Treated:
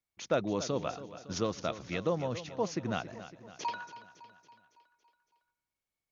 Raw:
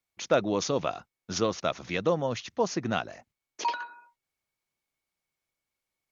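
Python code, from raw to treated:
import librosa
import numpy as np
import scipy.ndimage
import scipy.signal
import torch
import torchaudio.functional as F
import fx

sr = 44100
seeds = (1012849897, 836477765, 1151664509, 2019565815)

p1 = fx.low_shelf(x, sr, hz=240.0, db=5.5)
p2 = p1 + fx.echo_feedback(p1, sr, ms=279, feedback_pct=55, wet_db=-13.5, dry=0)
y = p2 * librosa.db_to_amplitude(-6.5)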